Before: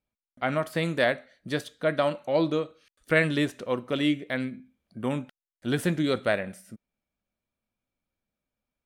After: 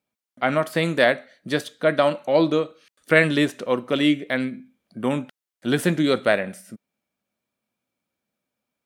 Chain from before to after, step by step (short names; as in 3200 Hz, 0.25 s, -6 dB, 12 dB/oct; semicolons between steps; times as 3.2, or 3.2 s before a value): HPF 150 Hz 12 dB/oct; gain +6 dB